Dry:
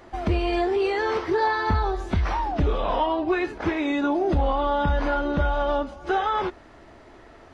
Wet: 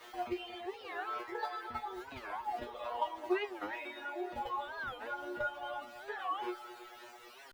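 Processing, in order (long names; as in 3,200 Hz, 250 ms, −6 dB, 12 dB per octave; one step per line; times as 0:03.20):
high-shelf EQ 3,800 Hz +7 dB
background noise white −39 dBFS
mains-hum notches 60/120/180 Hz
output level in coarse steps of 10 dB
three-way crossover with the lows and the highs turned down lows −16 dB, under 350 Hz, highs −19 dB, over 3,700 Hz
tuned comb filter 120 Hz, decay 0.36 s, harmonics all, mix 100%
reverb reduction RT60 1.7 s
echo machine with several playback heads 110 ms, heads second and third, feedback 60%, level −15.5 dB
wow of a warped record 45 rpm, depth 250 cents
level +6 dB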